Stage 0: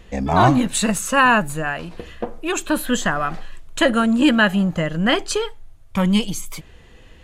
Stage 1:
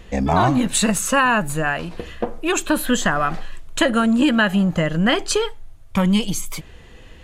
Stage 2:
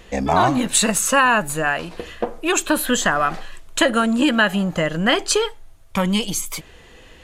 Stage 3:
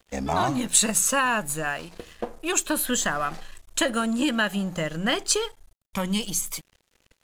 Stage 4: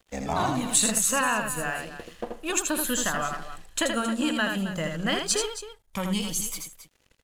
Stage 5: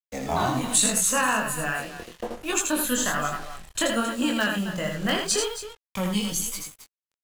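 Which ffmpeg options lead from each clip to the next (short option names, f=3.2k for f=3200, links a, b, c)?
-af "acompressor=threshold=-16dB:ratio=6,volume=3dB"
-af "bass=f=250:g=-7,treble=f=4k:g=2,volume=1.5dB"
-af "bass=f=250:g=3,treble=f=4k:g=7,bandreject=f=60:t=h:w=6,bandreject=f=120:t=h:w=6,bandreject=f=180:t=h:w=6,aeval=exprs='sgn(val(0))*max(abs(val(0))-0.0119,0)':c=same,volume=-7.5dB"
-af "aecho=1:1:81|269:0.562|0.237,volume=-3dB"
-filter_complex "[0:a]acrossover=split=230|1700|3000[a][b][c][d];[c]aeval=exprs='(mod(17.8*val(0)+1,2)-1)/17.8':c=same[e];[a][b][e][d]amix=inputs=4:normalize=0,acrusher=bits=6:mix=0:aa=0.5,flanger=delay=20:depth=4.2:speed=1.2,volume=4.5dB"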